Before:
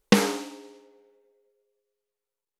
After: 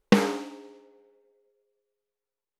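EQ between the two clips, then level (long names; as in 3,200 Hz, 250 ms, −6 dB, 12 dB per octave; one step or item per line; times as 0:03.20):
high-shelf EQ 3,900 Hz −10.5 dB
0.0 dB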